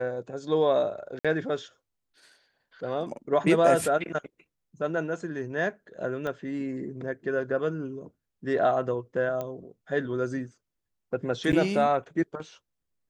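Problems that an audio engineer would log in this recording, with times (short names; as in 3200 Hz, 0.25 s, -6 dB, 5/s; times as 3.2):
1.19–1.25 gap 56 ms
6.27 pop -21 dBFS
9.41 pop -20 dBFS
11.52–11.53 gap 9 ms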